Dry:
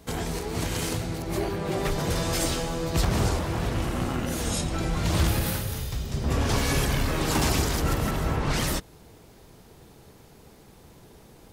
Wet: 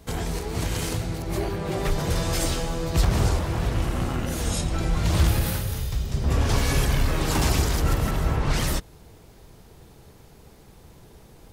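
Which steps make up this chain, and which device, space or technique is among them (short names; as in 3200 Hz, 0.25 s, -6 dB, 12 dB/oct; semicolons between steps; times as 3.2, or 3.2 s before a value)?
low shelf boost with a cut just above (low shelf 93 Hz +7 dB; bell 250 Hz -2 dB)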